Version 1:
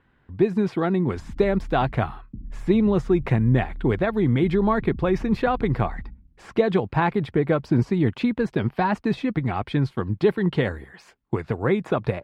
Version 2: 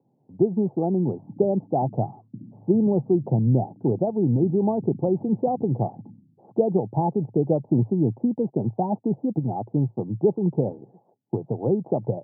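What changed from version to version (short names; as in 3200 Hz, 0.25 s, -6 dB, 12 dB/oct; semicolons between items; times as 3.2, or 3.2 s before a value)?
background: send +8.5 dB; master: add Chebyshev band-pass 110–850 Hz, order 5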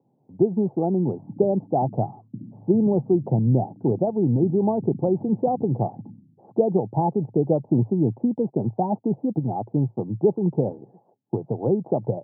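speech: remove air absorption 410 m; background +3.0 dB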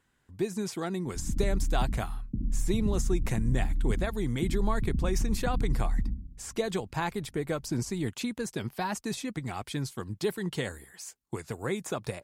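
speech -11.5 dB; master: remove Chebyshev band-pass 110–850 Hz, order 5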